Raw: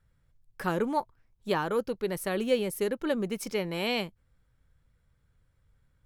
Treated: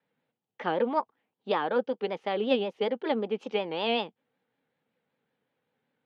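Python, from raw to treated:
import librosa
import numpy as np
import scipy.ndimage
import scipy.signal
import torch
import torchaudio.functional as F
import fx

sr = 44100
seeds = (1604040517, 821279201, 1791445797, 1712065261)

y = fx.formant_shift(x, sr, semitones=2)
y = fx.cabinet(y, sr, low_hz=200.0, low_slope=24, high_hz=3900.0, hz=(250.0, 470.0, 810.0, 3100.0), db=(6, 7, 10, 7))
y = fx.vibrato(y, sr, rate_hz=5.3, depth_cents=93.0)
y = y * librosa.db_to_amplitude(-3.0)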